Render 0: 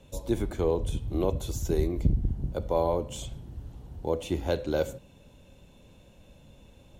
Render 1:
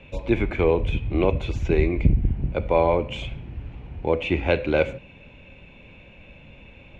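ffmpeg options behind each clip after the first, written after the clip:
-af "lowpass=f=2400:t=q:w=7,volume=2"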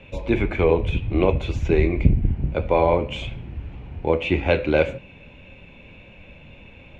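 -af "flanger=delay=9.5:depth=3.6:regen=-63:speed=1.8:shape=sinusoidal,volume=2"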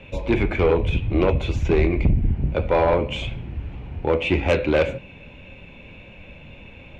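-af "asoftclip=type=tanh:threshold=0.224,volume=1.33"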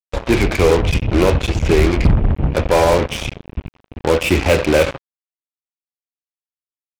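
-af "acrusher=bits=3:mix=0:aa=0.5,volume=1.78"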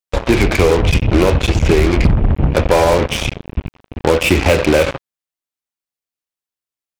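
-af "acompressor=threshold=0.224:ratio=6,volume=1.78"

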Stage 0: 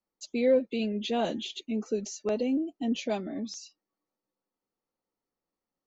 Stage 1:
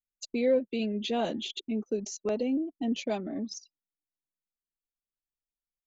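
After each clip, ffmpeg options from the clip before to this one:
-filter_complex "[0:a]anlmdn=0.251,asplit=2[s0][s1];[s1]acompressor=threshold=0.0126:ratio=6,volume=1.06[s2];[s0][s2]amix=inputs=2:normalize=0,volume=0.708"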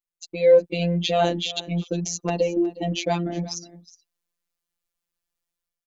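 -af "dynaudnorm=f=120:g=7:m=3.35,afftfilt=real='hypot(re,im)*cos(PI*b)':imag='0':win_size=1024:overlap=0.75,aecho=1:1:364:0.119,volume=1.33"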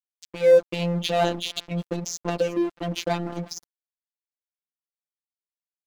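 -af "aeval=exprs='sgn(val(0))*max(abs(val(0))-0.0224,0)':c=same"

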